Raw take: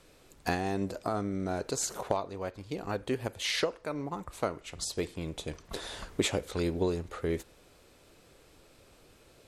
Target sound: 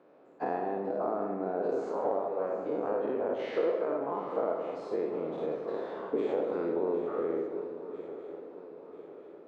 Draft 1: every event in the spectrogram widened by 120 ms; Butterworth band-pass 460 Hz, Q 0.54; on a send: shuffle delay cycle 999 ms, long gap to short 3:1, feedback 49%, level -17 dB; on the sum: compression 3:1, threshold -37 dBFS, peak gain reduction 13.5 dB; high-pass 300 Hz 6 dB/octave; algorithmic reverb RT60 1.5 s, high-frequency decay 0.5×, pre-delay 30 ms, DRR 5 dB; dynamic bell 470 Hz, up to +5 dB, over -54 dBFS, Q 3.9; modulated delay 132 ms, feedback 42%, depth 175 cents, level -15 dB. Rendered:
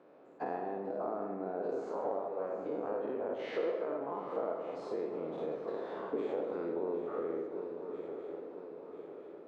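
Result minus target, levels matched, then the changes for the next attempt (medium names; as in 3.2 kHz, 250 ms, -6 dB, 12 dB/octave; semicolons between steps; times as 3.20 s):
compression: peak gain reduction +5.5 dB
change: compression 3:1, threshold -29 dBFS, peak gain reduction 8 dB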